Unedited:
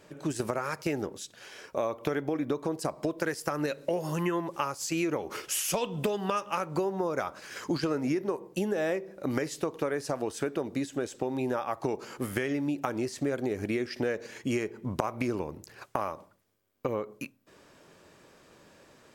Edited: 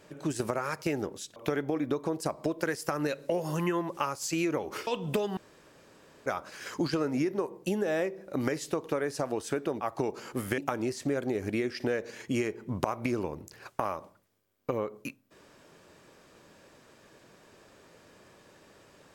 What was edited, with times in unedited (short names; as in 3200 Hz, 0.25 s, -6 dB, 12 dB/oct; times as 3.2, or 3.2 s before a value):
1.36–1.95 cut
5.46–5.77 cut
6.27–7.16 room tone
10.71–11.66 cut
12.43–12.74 cut